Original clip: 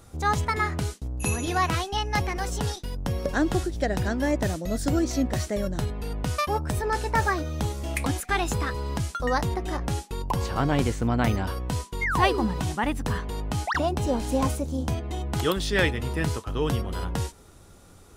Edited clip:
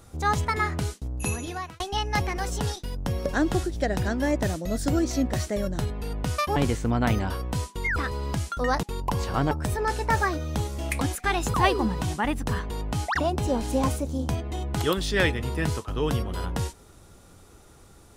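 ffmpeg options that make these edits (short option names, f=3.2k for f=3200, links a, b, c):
-filter_complex "[0:a]asplit=7[a][b][c][d][e][f][g];[a]atrim=end=1.8,asetpts=PTS-STARTPTS,afade=t=out:st=1.17:d=0.63[h];[b]atrim=start=1.8:end=6.562,asetpts=PTS-STARTPTS,afade=t=in:d=0.004:c=hsin[i];[c]atrim=start=10.728:end=12.132[j];[d]atrim=start=8.588:end=9.462[k];[e]atrim=start=10.048:end=10.732[l];[f]atrim=start=6.558:end=8.592[m];[g]atrim=start=12.128[n];[h][i]concat=n=2:v=0:a=1[o];[o][j]acrossfade=d=0.004:c1=hsin:c2=hsin[p];[p][k]acrossfade=d=0.004:c1=hsin:c2=hsin[q];[q][l]acrossfade=d=0.004:c1=hsin:c2=hsin[r];[r][m]acrossfade=d=0.004:c1=hsin:c2=hsin[s];[s][n]acrossfade=d=0.004:c1=hsin:c2=hsin"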